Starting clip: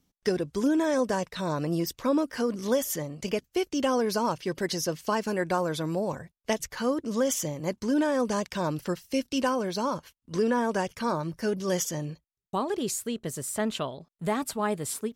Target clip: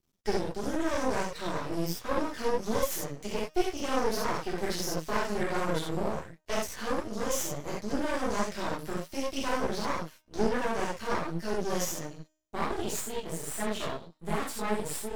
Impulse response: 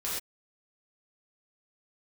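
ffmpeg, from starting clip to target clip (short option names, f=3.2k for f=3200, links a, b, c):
-filter_complex "[1:a]atrim=start_sample=2205,atrim=end_sample=4410[a];[0:a][a]afir=irnorm=-1:irlink=0,flanger=delay=5.5:depth=9.7:regen=33:speed=1.4:shape=sinusoidal,bandreject=f=310.2:t=h:w=4,bandreject=f=620.4:t=h:w=4,bandreject=f=930.6:t=h:w=4,bandreject=f=1.2408k:t=h:w=4,bandreject=f=1.551k:t=h:w=4,bandreject=f=1.8612k:t=h:w=4,bandreject=f=2.1714k:t=h:w=4,bandreject=f=2.4816k:t=h:w=4,bandreject=f=2.7918k:t=h:w=4,bandreject=f=3.102k:t=h:w=4,bandreject=f=3.4122k:t=h:w=4,bandreject=f=3.7224k:t=h:w=4,bandreject=f=4.0326k:t=h:w=4,bandreject=f=4.3428k:t=h:w=4,bandreject=f=4.653k:t=h:w=4,bandreject=f=4.9632k:t=h:w=4,bandreject=f=5.2734k:t=h:w=4,bandreject=f=5.5836k:t=h:w=4,bandreject=f=5.8938k:t=h:w=4,bandreject=f=6.204k:t=h:w=4,bandreject=f=6.5142k:t=h:w=4,bandreject=f=6.8244k:t=h:w=4,bandreject=f=7.1346k:t=h:w=4,bandreject=f=7.4448k:t=h:w=4,aeval=exprs='max(val(0),0)':c=same,volume=1.5dB"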